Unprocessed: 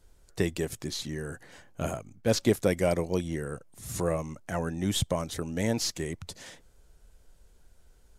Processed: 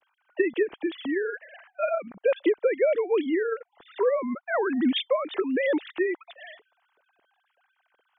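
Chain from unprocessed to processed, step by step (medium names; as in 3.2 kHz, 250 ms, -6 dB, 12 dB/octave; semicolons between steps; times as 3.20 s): formants replaced by sine waves; compression 5:1, threshold -29 dBFS, peak gain reduction 11 dB; trim +9 dB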